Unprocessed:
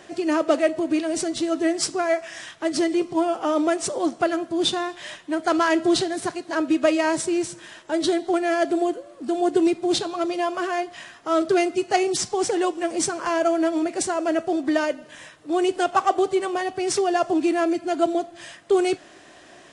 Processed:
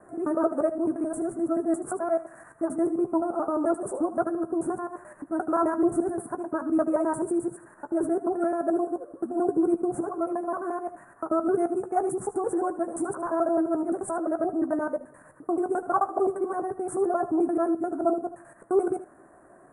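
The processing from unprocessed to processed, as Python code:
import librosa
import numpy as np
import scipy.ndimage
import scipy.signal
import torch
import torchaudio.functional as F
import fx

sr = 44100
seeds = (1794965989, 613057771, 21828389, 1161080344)

p1 = fx.local_reverse(x, sr, ms=87.0)
p2 = scipy.signal.sosfilt(scipy.signal.ellip(3, 1.0, 70, [1400.0, 9700.0], 'bandstop', fs=sr, output='sos'), p1)
p3 = p2 + fx.room_early_taps(p2, sr, ms=(15, 76), db=(-11.0, -14.5), dry=0)
p4 = fx.dynamic_eq(p3, sr, hz=2000.0, q=1.9, threshold_db=-46.0, ratio=4.0, max_db=-6)
y = p4 * 10.0 ** (-3.5 / 20.0)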